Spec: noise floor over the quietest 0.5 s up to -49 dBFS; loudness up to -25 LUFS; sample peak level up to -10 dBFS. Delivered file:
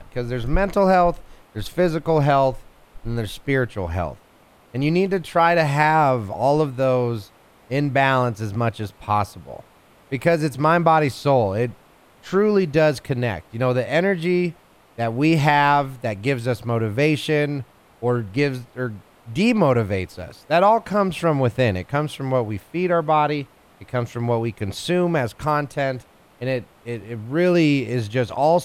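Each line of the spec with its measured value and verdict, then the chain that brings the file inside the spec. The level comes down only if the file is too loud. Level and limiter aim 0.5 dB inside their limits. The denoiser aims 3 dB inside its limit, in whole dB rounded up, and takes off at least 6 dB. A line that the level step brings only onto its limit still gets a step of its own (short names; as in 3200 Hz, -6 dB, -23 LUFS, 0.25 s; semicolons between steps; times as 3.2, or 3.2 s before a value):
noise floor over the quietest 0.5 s -53 dBFS: OK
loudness -21.0 LUFS: fail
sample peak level -3.5 dBFS: fail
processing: gain -4.5 dB; limiter -10.5 dBFS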